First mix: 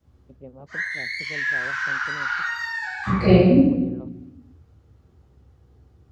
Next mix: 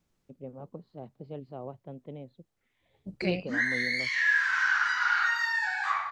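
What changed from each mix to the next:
second voice: send off; background: entry +2.80 s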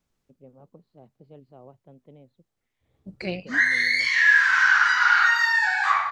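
first voice -7.5 dB; background +8.0 dB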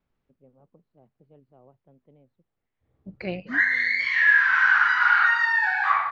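first voice -7.0 dB; master: add LPF 2600 Hz 12 dB/oct

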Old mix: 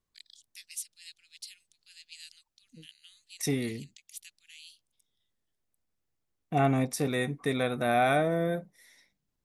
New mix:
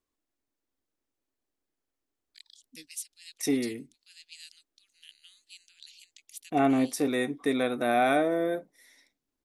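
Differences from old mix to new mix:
first voice: entry +2.20 s; master: add resonant low shelf 220 Hz -6.5 dB, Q 3

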